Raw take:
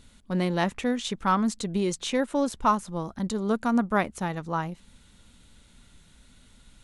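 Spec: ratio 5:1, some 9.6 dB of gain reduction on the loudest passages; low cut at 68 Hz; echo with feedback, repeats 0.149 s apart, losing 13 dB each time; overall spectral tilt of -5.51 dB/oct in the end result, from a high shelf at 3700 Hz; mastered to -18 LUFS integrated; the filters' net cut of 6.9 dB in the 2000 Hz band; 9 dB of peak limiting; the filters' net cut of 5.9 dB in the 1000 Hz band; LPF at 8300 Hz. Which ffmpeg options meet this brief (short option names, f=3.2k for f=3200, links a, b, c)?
-af "highpass=68,lowpass=8.3k,equalizer=f=1k:t=o:g=-5.5,equalizer=f=2k:t=o:g=-6,highshelf=f=3.7k:g=-4,acompressor=threshold=-32dB:ratio=5,alimiter=level_in=8dB:limit=-24dB:level=0:latency=1,volume=-8dB,aecho=1:1:149|298|447:0.224|0.0493|0.0108,volume=22.5dB"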